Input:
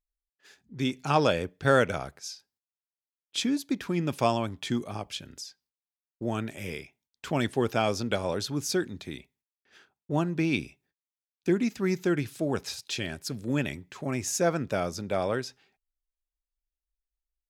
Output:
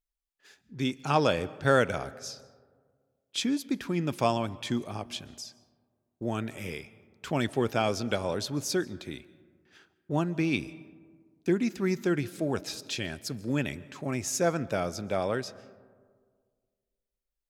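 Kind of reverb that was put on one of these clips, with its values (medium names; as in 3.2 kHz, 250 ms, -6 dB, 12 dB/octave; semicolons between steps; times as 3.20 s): algorithmic reverb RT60 1.8 s, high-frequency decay 0.35×, pre-delay 100 ms, DRR 19.5 dB; trim -1 dB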